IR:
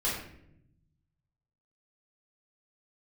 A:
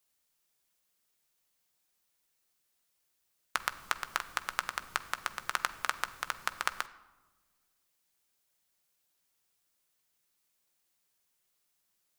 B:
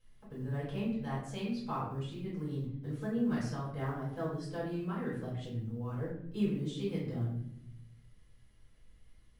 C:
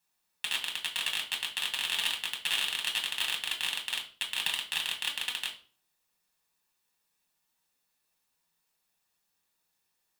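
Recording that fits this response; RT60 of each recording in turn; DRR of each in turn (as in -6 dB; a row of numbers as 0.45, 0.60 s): B; not exponential, 0.75 s, 0.40 s; 10.5, -9.5, 0.0 dB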